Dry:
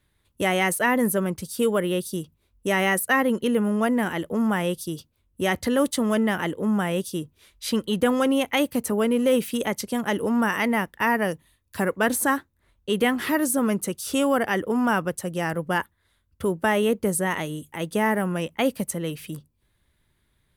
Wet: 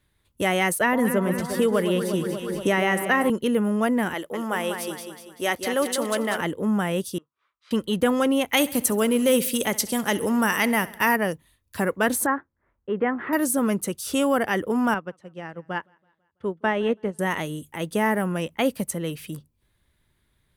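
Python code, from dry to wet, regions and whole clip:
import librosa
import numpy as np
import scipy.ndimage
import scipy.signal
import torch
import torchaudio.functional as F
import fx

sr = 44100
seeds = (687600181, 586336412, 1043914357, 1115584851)

y = fx.chain(x, sr, fx.high_shelf(hz=5000.0, db=-7.0),
    fx.echo_alternate(ms=118, hz=1100.0, feedback_pct=76, wet_db=-8.0),
    fx.band_squash(depth_pct=70), at=(0.8, 3.3))
y = fx.chain(y, sr, fx.bass_treble(bass_db=-15, treble_db=2),
    fx.echo_feedback(ms=194, feedback_pct=45, wet_db=-7.0), at=(4.14, 6.41))
y = fx.chain(y, sr, fx.bandpass_q(hz=1200.0, q=5.5),
    fx.air_absorb(metres=57.0), at=(7.18, 7.71))
y = fx.chain(y, sr, fx.high_shelf(hz=3600.0, db=10.0),
    fx.echo_feedback(ms=66, feedback_pct=60, wet_db=-19.0), at=(8.49, 11.16))
y = fx.chain(y, sr, fx.lowpass(hz=1800.0, slope=24),
    fx.low_shelf(hz=160.0, db=-10.5), at=(12.26, 13.33))
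y = fx.chain(y, sr, fx.bandpass_edges(low_hz=110.0, high_hz=3500.0),
    fx.echo_feedback(ms=165, feedback_pct=55, wet_db=-21.0),
    fx.upward_expand(threshold_db=-30.0, expansion=2.5), at=(14.94, 17.19))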